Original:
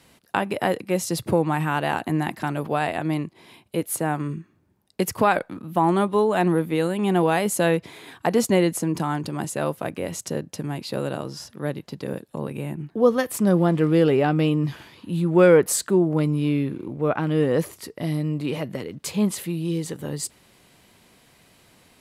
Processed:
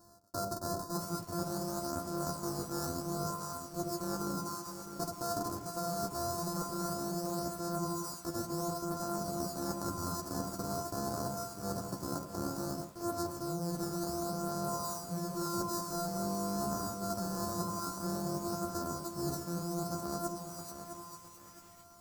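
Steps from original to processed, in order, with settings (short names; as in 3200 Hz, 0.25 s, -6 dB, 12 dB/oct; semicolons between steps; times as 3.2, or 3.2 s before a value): sample sorter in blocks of 128 samples; elliptic band-stop 1400–4600 Hz, stop band 40 dB; on a send: split-band echo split 920 Hz, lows 91 ms, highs 0.448 s, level -10 dB; on the sum: flange 0.18 Hz, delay 9.8 ms, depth 2.4 ms, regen +6%; reverse; compressor 16:1, threshold -33 dBFS, peak gain reduction 20.5 dB; reverse; high shelf 4200 Hz +4.5 dB; lo-fi delay 0.66 s, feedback 35%, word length 9-bit, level -8.5 dB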